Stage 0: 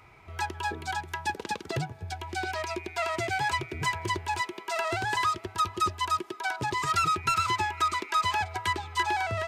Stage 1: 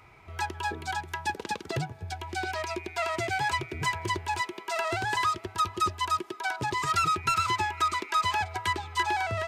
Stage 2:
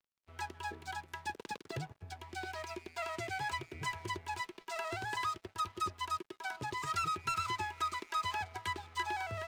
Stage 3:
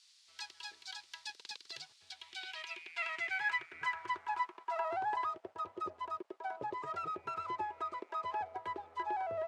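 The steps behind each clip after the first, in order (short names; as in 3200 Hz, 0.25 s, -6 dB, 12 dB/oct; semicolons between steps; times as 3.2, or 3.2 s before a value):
nothing audible
crossover distortion -46.5 dBFS; gain -8.5 dB
band noise 770–9800 Hz -68 dBFS; band-pass sweep 4400 Hz -> 570 Hz, 1.91–5.61; gain +8.5 dB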